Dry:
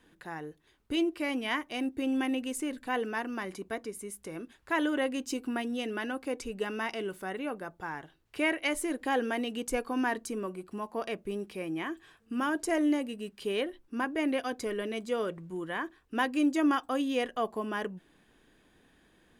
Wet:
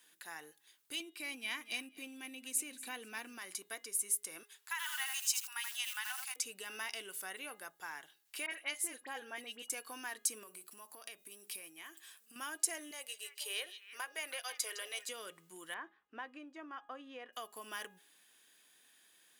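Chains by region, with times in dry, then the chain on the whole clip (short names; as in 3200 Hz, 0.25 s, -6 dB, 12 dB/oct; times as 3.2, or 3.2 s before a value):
1–3.38 small resonant body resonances 210/2400/3900 Hz, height 11 dB, ringing for 20 ms + feedback echo 0.24 s, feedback 34%, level -18.5 dB
4.43–6.36 brick-wall FIR high-pass 740 Hz + lo-fi delay 81 ms, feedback 35%, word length 8-bit, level -4.5 dB
8.46–9.7 high shelf 3800 Hz -8.5 dB + dispersion highs, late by 46 ms, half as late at 2300 Hz + three-band expander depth 40%
10.43–12.36 high shelf 8200 Hz +8 dB + compressor 16:1, threshold -40 dBFS
12.91–15.09 HPF 440 Hz 24 dB/oct + delay with a stepping band-pass 0.16 s, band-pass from 4600 Hz, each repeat -1.4 oct, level -9 dB
15.74–17.33 LPF 1400 Hz + de-hum 66.47 Hz, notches 3
whole clip: compressor, threshold -32 dBFS; differentiator; de-hum 413.9 Hz, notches 10; gain +9 dB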